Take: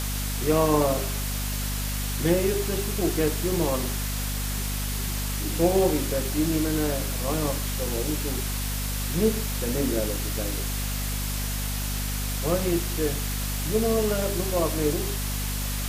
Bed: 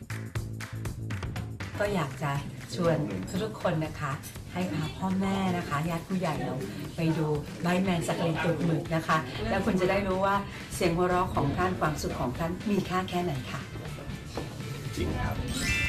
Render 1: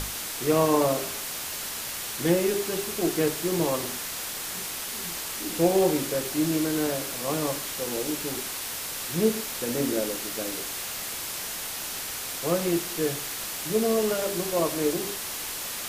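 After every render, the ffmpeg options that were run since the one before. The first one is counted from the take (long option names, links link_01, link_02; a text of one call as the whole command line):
ffmpeg -i in.wav -af "bandreject=frequency=50:width_type=h:width=6,bandreject=frequency=100:width_type=h:width=6,bandreject=frequency=150:width_type=h:width=6,bandreject=frequency=200:width_type=h:width=6,bandreject=frequency=250:width_type=h:width=6" out.wav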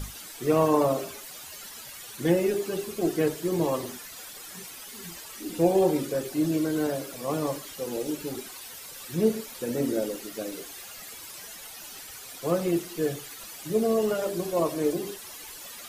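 ffmpeg -i in.wav -af "afftdn=noise_reduction=13:noise_floor=-34" out.wav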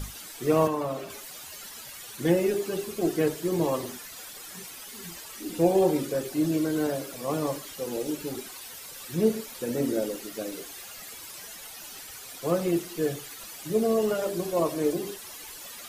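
ffmpeg -i in.wav -filter_complex "[0:a]asettb=1/sr,asplit=3[link_01][link_02][link_03];[link_01]atrim=end=0.674[link_04];[link_02]atrim=start=0.67:end=1.1,asetpts=PTS-STARTPTS,afade=type=in:duration=0.004:curve=qsin,afade=type=out:start_time=0.426:duration=0.004:curve=qsin,acrossover=split=200|1100|3800[link_05][link_06][link_07][link_08];[link_05]acompressor=threshold=-40dB:ratio=3[link_09];[link_06]acompressor=threshold=-32dB:ratio=3[link_10];[link_07]acompressor=threshold=-37dB:ratio=3[link_11];[link_08]acompressor=threshold=-53dB:ratio=3[link_12];[link_09][link_10][link_11][link_12]amix=inputs=4:normalize=0[link_13];[link_03]atrim=start=1.096[link_14];[link_04][link_13]acrossfade=duration=0.004:curve1=hsin:curve2=qsin[link_15];[link_15][link_14]acrossfade=duration=0.004:curve1=qsin:curve2=hsin" out.wav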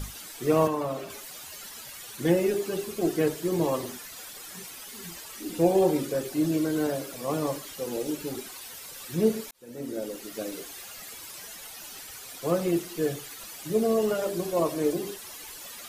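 ffmpeg -i in.wav -filter_complex "[0:a]asplit=2[link_01][link_02];[link_01]atrim=end=9.51,asetpts=PTS-STARTPTS,afade=type=out:start_time=9.506:duration=0.004:curve=hsin[link_03];[link_02]atrim=start=9.51,asetpts=PTS-STARTPTS,afade=type=in:duration=0.9[link_04];[link_03][link_04]concat=n=2:v=0:a=1" out.wav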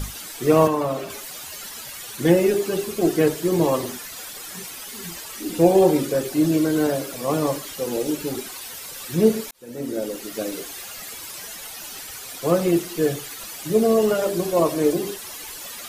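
ffmpeg -i in.wav -af "volume=6.5dB" out.wav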